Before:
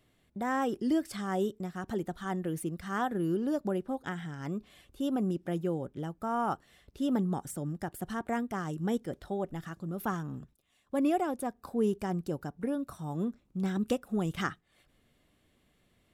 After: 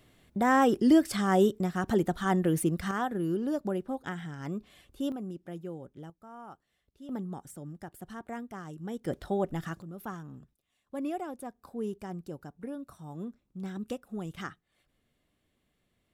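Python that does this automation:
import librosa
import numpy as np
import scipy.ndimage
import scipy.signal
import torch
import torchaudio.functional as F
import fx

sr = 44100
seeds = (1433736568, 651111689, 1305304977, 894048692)

y = fx.gain(x, sr, db=fx.steps((0.0, 7.5), (2.91, 0.0), (5.12, -8.0), (6.1, -16.0), (7.09, -7.0), (9.04, 4.5), (9.82, -6.5)))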